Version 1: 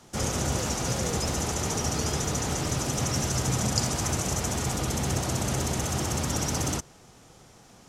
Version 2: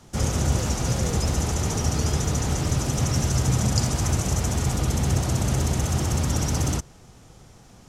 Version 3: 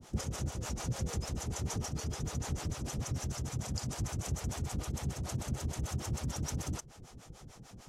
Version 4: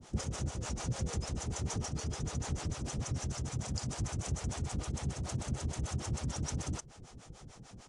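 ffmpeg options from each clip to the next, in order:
-af "lowshelf=f=140:g=11.5"
-filter_complex "[0:a]acompressor=threshold=0.0316:ratio=10,acrossover=split=430[s0][s1];[s0]aeval=exprs='val(0)*(1-1/2+1/2*cos(2*PI*6.7*n/s))':c=same[s2];[s1]aeval=exprs='val(0)*(1-1/2-1/2*cos(2*PI*6.7*n/s))':c=same[s3];[s2][s3]amix=inputs=2:normalize=0,volume=1.19"
-af "aresample=22050,aresample=44100"

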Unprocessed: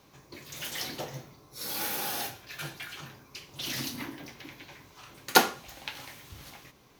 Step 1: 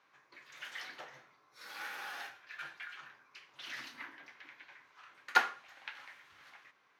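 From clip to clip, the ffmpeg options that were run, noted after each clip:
-af "bandpass=f=1600:t=q:w=1.9:csg=0,volume=0.891"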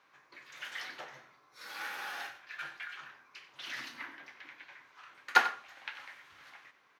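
-filter_complex "[0:a]asplit=2[s0][s1];[s1]adelay=93.29,volume=0.2,highshelf=f=4000:g=-2.1[s2];[s0][s2]amix=inputs=2:normalize=0,volume=1.41"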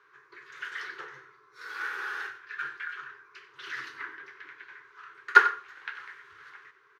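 -af "firequalizer=gain_entry='entry(140,0);entry(220,-20);entry(400,12);entry(630,-20);entry(1000,1);entry(1500,7);entry(2300,-4);entry(6900,-6);entry(13000,-12)':delay=0.05:min_phase=1,volume=1.33"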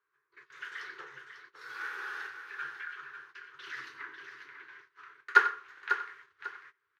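-af "aecho=1:1:546|1092|1638:0.355|0.0993|0.0278,agate=range=0.141:threshold=0.00355:ratio=16:detection=peak,volume=0.596"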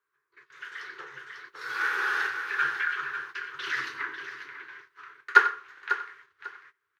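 -af "dynaudnorm=f=280:g=11:m=4.47"

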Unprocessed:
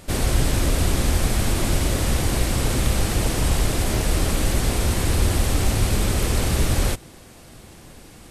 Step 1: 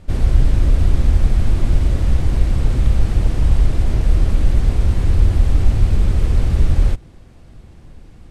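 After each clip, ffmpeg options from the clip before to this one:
-af "aemphasis=mode=reproduction:type=bsi,volume=0.501"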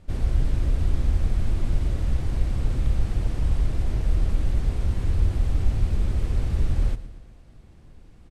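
-af "aecho=1:1:116|232|348|464|580|696:0.168|0.0957|0.0545|0.0311|0.0177|0.0101,volume=0.376"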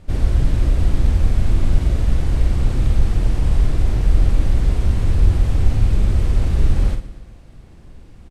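-filter_complex "[0:a]asplit=2[s0][s1];[s1]adelay=47,volume=0.447[s2];[s0][s2]amix=inputs=2:normalize=0,volume=2.11"

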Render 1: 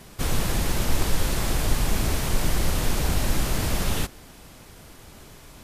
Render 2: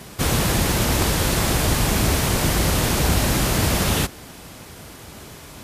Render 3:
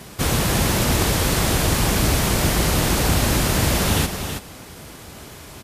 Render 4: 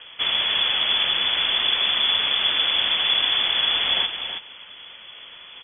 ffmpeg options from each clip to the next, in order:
-af "highpass=60,volume=2.37"
-af "aecho=1:1:325:0.422"
-af "lowpass=f=3000:t=q:w=0.5098,lowpass=f=3000:t=q:w=0.6013,lowpass=f=3000:t=q:w=0.9,lowpass=f=3000:t=q:w=2.563,afreqshift=-3500,volume=0.794"

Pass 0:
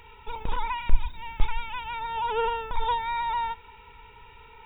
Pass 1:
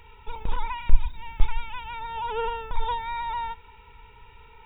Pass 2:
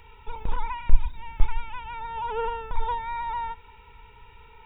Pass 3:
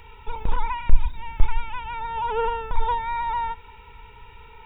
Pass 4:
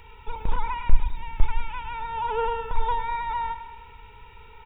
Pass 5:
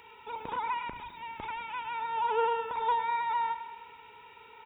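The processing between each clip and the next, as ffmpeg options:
-af "lowshelf=f=130:g=6,volume=0.75"
-filter_complex "[0:a]acrossover=split=2700[s0][s1];[s1]acompressor=threshold=0.00112:ratio=4:attack=1:release=60[s2];[s0][s2]amix=inputs=2:normalize=0"
-af "acontrast=36,volume=0.891"
-af "aecho=1:1:104|208|312|416|520|624|728:0.251|0.148|0.0874|0.0516|0.0304|0.018|0.0106,volume=0.794"
-af "highpass=260,volume=0.841"

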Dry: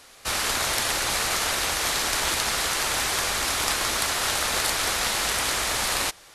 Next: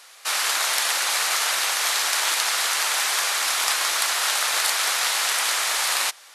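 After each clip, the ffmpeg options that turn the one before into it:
-af "highpass=800,volume=1.41"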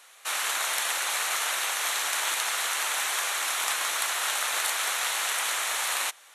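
-af "equalizer=f=4900:t=o:w=0.3:g=-10.5,volume=0.596"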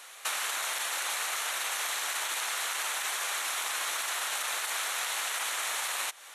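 -af "alimiter=limit=0.106:level=0:latency=1:release=32,acompressor=threshold=0.0178:ratio=6,volume=1.78"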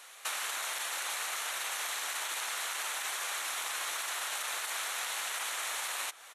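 -filter_complex "[0:a]asplit=2[s0][s1];[s1]adelay=1341,volume=0.178,highshelf=f=4000:g=-30.2[s2];[s0][s2]amix=inputs=2:normalize=0,volume=0.668"

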